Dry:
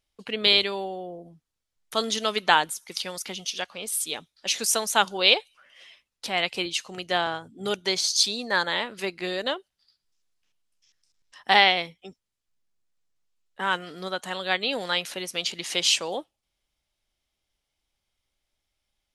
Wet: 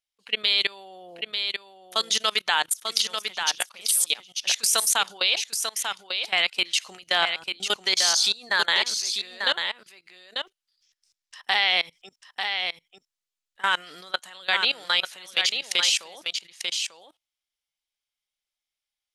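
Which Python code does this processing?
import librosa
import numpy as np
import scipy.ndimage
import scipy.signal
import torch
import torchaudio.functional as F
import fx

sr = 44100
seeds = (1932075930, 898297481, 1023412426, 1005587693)

y = fx.tilt_shelf(x, sr, db=-9.5, hz=680.0)
y = fx.level_steps(y, sr, step_db=23)
y = y + 10.0 ** (-6.0 / 20.0) * np.pad(y, (int(893 * sr / 1000.0), 0))[:len(y)]
y = y * 10.0 ** (1.5 / 20.0)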